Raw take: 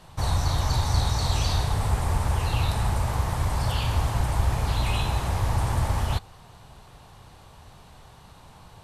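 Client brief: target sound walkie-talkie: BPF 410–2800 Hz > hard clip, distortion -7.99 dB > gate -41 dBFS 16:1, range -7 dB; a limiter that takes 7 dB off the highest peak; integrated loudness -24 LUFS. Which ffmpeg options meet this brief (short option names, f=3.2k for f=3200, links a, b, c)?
-af "alimiter=limit=-17dB:level=0:latency=1,highpass=410,lowpass=2.8k,asoftclip=type=hard:threshold=-37dB,agate=range=-7dB:threshold=-41dB:ratio=16,volume=15dB"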